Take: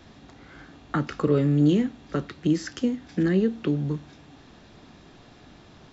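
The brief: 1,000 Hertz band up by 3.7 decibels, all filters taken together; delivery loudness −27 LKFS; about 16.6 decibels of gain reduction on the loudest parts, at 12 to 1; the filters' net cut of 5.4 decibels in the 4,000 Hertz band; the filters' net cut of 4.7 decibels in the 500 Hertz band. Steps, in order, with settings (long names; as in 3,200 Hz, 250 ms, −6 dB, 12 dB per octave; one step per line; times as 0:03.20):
parametric band 500 Hz −7.5 dB
parametric band 1,000 Hz +7.5 dB
parametric band 4,000 Hz −8.5 dB
downward compressor 12 to 1, threshold −35 dBFS
level +15.5 dB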